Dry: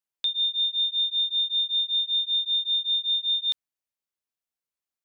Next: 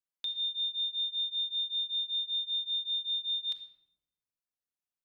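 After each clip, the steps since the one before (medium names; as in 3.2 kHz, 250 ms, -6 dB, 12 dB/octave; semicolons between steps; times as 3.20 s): reverberation RT60 0.90 s, pre-delay 4 ms, DRR 4.5 dB; trim -8.5 dB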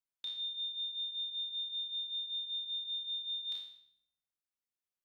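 spectral sustain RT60 0.65 s; trim -6 dB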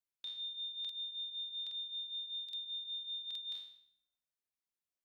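crackling interface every 0.82 s, samples 2048, repeat, from 0.80 s; trim -3.5 dB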